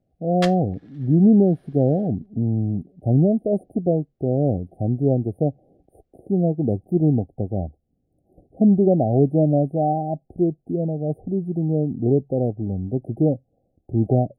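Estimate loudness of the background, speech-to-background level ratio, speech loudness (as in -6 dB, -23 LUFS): -33.5 LUFS, 12.0 dB, -21.5 LUFS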